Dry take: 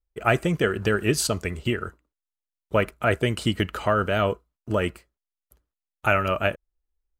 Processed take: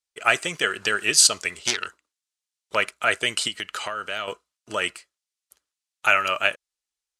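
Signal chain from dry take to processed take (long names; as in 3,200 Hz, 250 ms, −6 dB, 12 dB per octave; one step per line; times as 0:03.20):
0:01.52–0:02.75: phase distortion by the signal itself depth 0.31 ms
0:03.47–0:04.28: downward compressor 6 to 1, threshold −26 dBFS, peak gain reduction 9.5 dB
meter weighting curve ITU-R 468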